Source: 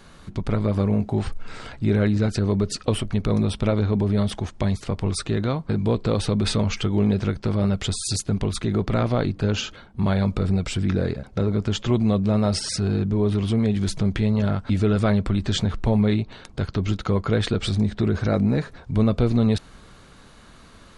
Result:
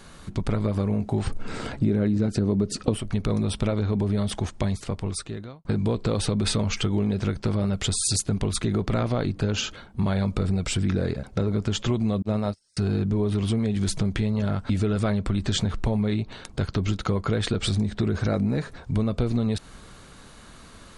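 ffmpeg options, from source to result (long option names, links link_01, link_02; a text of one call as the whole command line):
ffmpeg -i in.wav -filter_complex "[0:a]asettb=1/sr,asplit=3[link_01][link_02][link_03];[link_01]atrim=end=1.274[link_04];[link_02]atrim=start=1.27:end=2.97,asetpts=PTS-STARTPTS,afade=type=in:duration=0.004:curve=qsin,afade=type=out:start_time=1.696:duration=0.004:curve=qsin,equalizer=frequency=250:width_type=o:width=2.7:gain=10[link_05];[link_03]atrim=start=2.966[link_06];[link_04][link_05]acrossfade=duration=0.004:curve1=hsin:curve2=qsin[link_07];[link_07][link_06]acrossfade=duration=0.004:curve1=qsin:curve2=hsin,asettb=1/sr,asplit=3[link_08][link_09][link_10];[link_08]atrim=end=12.224[link_11];[link_09]atrim=start=12.22:end=12.77,asetpts=PTS-STARTPTS,afade=type=in:duration=0.004:curve=qsin,afade=type=out:start_time=0.546:duration=0.004:curve=qsin,agate=range=-43dB:threshold=-20dB:ratio=16:release=100:detection=peak[link_12];[link_10]atrim=start=12.766[link_13];[link_11][link_12]acrossfade=duration=0.004:curve1=hsin:curve2=qsin[link_14];[link_14][link_13]acrossfade=duration=0.004:curve1=qsin:curve2=hsin,asplit=2[link_15][link_16];[link_15]atrim=end=5.65,asetpts=PTS-STARTPTS,afade=type=out:start_time=4.48:duration=1.17[link_17];[link_16]atrim=start=5.65,asetpts=PTS-STARTPTS,afade=type=in:duration=0.004:curve=hsin[link_18];[link_17][link_18]concat=n=2:v=0:a=1,equalizer=frequency=9200:width=1:gain=5.5,acompressor=threshold=-21dB:ratio=6,volume=1dB" out.wav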